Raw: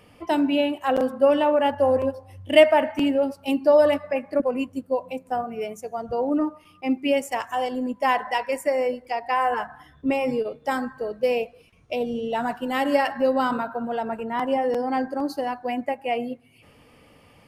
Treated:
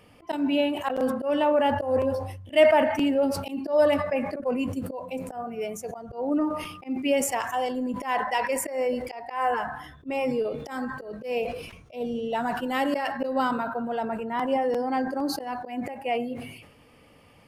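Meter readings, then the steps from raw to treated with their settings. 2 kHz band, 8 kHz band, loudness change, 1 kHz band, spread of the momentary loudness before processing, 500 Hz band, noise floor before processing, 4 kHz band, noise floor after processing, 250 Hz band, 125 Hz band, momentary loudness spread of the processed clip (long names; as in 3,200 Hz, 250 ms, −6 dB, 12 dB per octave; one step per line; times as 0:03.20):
−2.5 dB, +7.5 dB, −3.0 dB, −3.0 dB, 11 LU, −3.5 dB, −55 dBFS, −3.0 dB, −55 dBFS, −2.5 dB, +3.0 dB, 12 LU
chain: volume swells 147 ms
level that may fall only so fast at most 60 dB per second
level −2 dB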